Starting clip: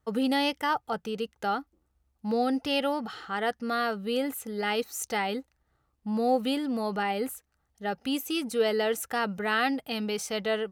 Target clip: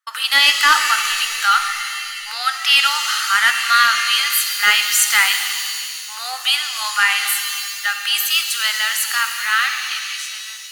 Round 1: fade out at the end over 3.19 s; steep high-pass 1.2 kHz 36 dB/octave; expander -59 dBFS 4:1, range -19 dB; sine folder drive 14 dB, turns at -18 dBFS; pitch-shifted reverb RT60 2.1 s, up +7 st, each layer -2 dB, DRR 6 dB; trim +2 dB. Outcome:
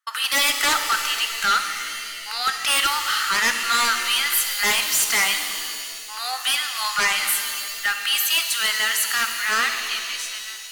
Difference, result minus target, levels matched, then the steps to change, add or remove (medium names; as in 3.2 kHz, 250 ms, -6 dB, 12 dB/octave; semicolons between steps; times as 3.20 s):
sine folder: distortion +20 dB
change: sine folder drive 14 dB, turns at -6.5 dBFS